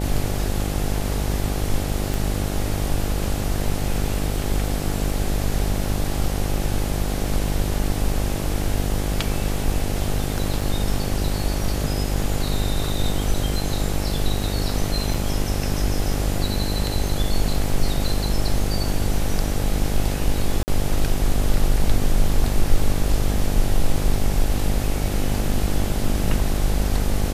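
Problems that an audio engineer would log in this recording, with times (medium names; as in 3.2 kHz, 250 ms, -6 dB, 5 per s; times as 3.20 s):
buzz 50 Hz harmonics 17 -25 dBFS
2.14 s: pop
10.61 s: dropout 3 ms
15.14 s: dropout 4.8 ms
20.63–20.68 s: dropout 49 ms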